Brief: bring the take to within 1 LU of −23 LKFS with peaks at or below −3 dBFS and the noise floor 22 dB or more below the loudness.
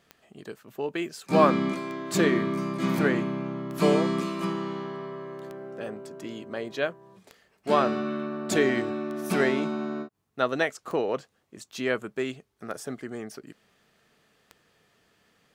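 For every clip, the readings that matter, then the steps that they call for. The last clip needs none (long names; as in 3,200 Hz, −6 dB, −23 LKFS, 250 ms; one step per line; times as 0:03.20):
number of clicks 9; integrated loudness −27.5 LKFS; sample peak −5.5 dBFS; target loudness −23.0 LKFS
→ click removal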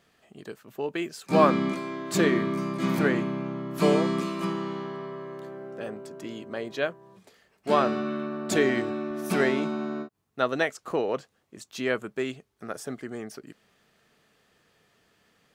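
number of clicks 0; integrated loudness −27.5 LKFS; sample peak −5.5 dBFS; target loudness −23.0 LKFS
→ level +4.5 dB
brickwall limiter −3 dBFS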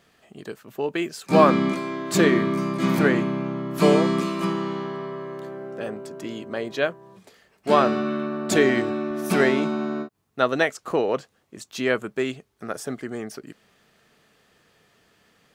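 integrated loudness −23.5 LKFS; sample peak −3.0 dBFS; background noise floor −65 dBFS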